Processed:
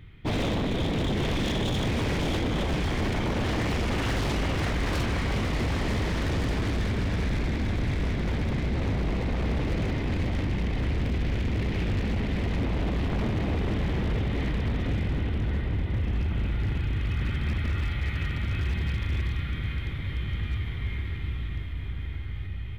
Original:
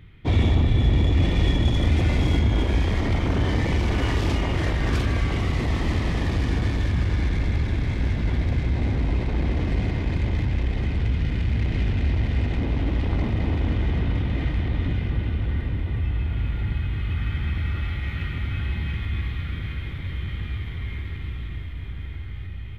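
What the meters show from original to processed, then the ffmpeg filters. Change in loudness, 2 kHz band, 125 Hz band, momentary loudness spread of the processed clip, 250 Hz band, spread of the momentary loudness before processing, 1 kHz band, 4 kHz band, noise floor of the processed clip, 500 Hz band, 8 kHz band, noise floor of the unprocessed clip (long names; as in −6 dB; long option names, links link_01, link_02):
−4.0 dB, −1.0 dB, −5.0 dB, 5 LU, −1.5 dB, 10 LU, −0.5 dB, −0.5 dB, −33 dBFS, 0.0 dB, can't be measured, −32 dBFS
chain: -af "bandreject=frequency=84.34:width_type=h:width=4,bandreject=frequency=168.68:width_type=h:width=4,bandreject=frequency=253.02:width_type=h:width=4,bandreject=frequency=337.36:width_type=h:width=4,bandreject=frequency=421.7:width_type=h:width=4,bandreject=frequency=506.04:width_type=h:width=4,bandreject=frequency=590.38:width_type=h:width=4,bandreject=frequency=674.72:width_type=h:width=4,bandreject=frequency=759.06:width_type=h:width=4,bandreject=frequency=843.4:width_type=h:width=4,bandreject=frequency=927.74:width_type=h:width=4,bandreject=frequency=1012.08:width_type=h:width=4,bandreject=frequency=1096.42:width_type=h:width=4,bandreject=frequency=1180.76:width_type=h:width=4,bandreject=frequency=1265.1:width_type=h:width=4,bandreject=frequency=1349.44:width_type=h:width=4,bandreject=frequency=1433.78:width_type=h:width=4,bandreject=frequency=1518.12:width_type=h:width=4,bandreject=frequency=1602.46:width_type=h:width=4,bandreject=frequency=1686.8:width_type=h:width=4,bandreject=frequency=1771.14:width_type=h:width=4,bandreject=frequency=1855.48:width_type=h:width=4,bandreject=frequency=1939.82:width_type=h:width=4,bandreject=frequency=2024.16:width_type=h:width=4,bandreject=frequency=2108.5:width_type=h:width=4,bandreject=frequency=2192.84:width_type=h:width=4,bandreject=frequency=2277.18:width_type=h:width=4,bandreject=frequency=2361.52:width_type=h:width=4,bandreject=frequency=2445.86:width_type=h:width=4,bandreject=frequency=2530.2:width_type=h:width=4,bandreject=frequency=2614.54:width_type=h:width=4,bandreject=frequency=2698.88:width_type=h:width=4,bandreject=frequency=2783.22:width_type=h:width=4,bandreject=frequency=2867.56:width_type=h:width=4,aeval=exprs='0.0841*(abs(mod(val(0)/0.0841+3,4)-2)-1)':channel_layout=same"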